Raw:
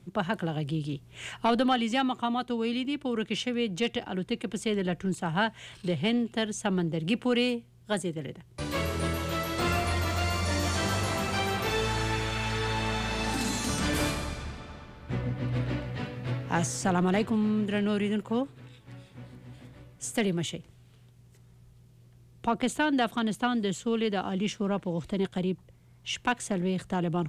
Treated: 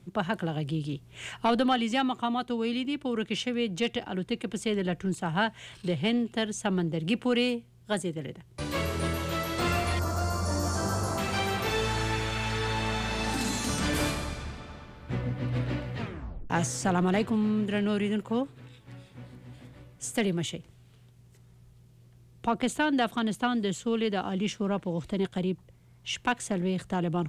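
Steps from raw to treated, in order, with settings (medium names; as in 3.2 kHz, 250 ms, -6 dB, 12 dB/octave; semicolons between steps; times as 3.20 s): 9.99–11.18 s: high-order bell 2.7 kHz -15 dB 1.3 oct; 15.98 s: tape stop 0.52 s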